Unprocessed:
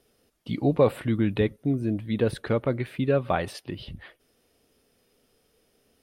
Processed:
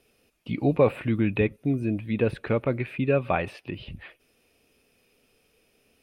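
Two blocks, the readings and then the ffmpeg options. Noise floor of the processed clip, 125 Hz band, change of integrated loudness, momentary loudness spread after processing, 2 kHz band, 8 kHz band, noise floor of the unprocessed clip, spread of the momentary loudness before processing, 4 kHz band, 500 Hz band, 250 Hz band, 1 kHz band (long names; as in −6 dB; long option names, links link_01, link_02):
−67 dBFS, 0.0 dB, 0.0 dB, 16 LU, +3.0 dB, below −10 dB, −68 dBFS, 16 LU, −4.0 dB, 0.0 dB, 0.0 dB, 0.0 dB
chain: -filter_complex "[0:a]equalizer=frequency=2500:width_type=o:width=0.26:gain=13,acrossover=split=2900[link_01][link_02];[link_02]acompressor=threshold=-54dB:ratio=4:attack=1:release=60[link_03];[link_01][link_03]amix=inputs=2:normalize=0"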